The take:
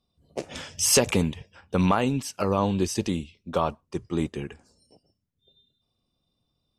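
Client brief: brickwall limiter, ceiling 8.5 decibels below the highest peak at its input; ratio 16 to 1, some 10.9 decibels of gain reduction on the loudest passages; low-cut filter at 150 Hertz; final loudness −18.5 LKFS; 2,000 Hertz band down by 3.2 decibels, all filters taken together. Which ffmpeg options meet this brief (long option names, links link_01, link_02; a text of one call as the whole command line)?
ffmpeg -i in.wav -af "highpass=150,equalizer=frequency=2000:width_type=o:gain=-4.5,acompressor=threshold=-25dB:ratio=16,volume=17dB,alimiter=limit=-6.5dB:level=0:latency=1" out.wav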